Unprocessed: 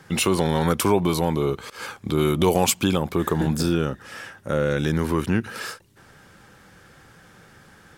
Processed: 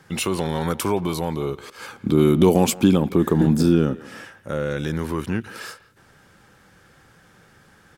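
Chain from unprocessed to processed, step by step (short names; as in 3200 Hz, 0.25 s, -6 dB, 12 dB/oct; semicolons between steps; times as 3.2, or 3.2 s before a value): 1.93–4.25 bell 240 Hz +11 dB 1.8 oct; speakerphone echo 0.17 s, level -18 dB; gain -3 dB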